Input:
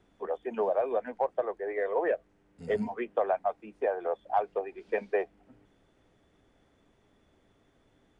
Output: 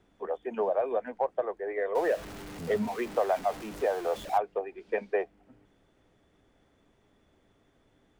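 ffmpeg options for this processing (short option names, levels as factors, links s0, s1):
-filter_complex "[0:a]asettb=1/sr,asplit=3[s0][s1][s2];[s0]atrim=end=1.954[s3];[s1]atrim=start=1.95:end=4.38,asetpts=PTS-STARTPTS,afade=t=in:d=0.004:c=qsin,afade=t=out:st=2.426:d=0.004:c=qsin,aeval=exprs='val(0)+0.5*0.0141*sgn(val(0))':c=same[s4];[s2]atrim=start=4.376[s5];[s3][s4]acrossfade=d=0.004:c1=hsin:c2=qsin[s6];[s6][s5]acrossfade=d=0.004:c1=qsin:c2=hsin"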